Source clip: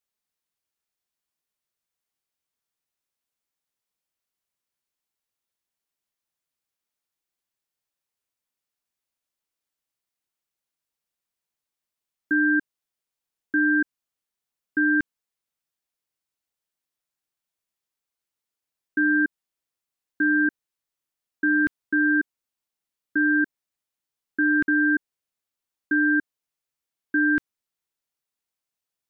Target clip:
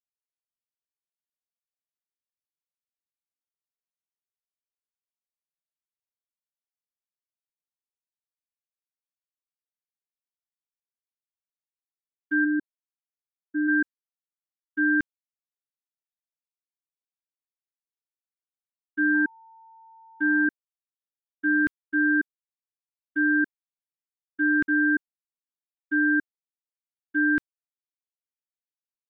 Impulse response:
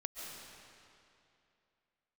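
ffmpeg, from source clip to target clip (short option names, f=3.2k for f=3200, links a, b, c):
-filter_complex "[0:a]agate=range=-33dB:threshold=-18dB:ratio=3:detection=peak,asplit=3[a][b][c];[a]afade=t=out:st=12.44:d=0.02[d];[b]lowpass=f=1.2k:w=0.5412,lowpass=f=1.2k:w=1.3066,afade=t=in:st=12.44:d=0.02,afade=t=out:st=13.67:d=0.02[e];[c]afade=t=in:st=13.67:d=0.02[f];[d][e][f]amix=inputs=3:normalize=0,asettb=1/sr,asplit=3[g][h][i];[g]atrim=end=19.144[j];[h]atrim=start=19.14:end=20.45,asetpts=PTS-STARTPTS,afade=t=in:d=0.004:c=qsin,afade=t=out:st=1.306:d=0.004:c=qsin,aeval=exprs='val(0)+0.00355*sin(2*PI*900*n/s)':c=same[k];[i]atrim=start=20.446[l];[j][k]acrossfade=d=0.004:c1=hsin:c2=qsin[m];[m][l]acrossfade=d=0.004:c1=qsin:c2=hsin"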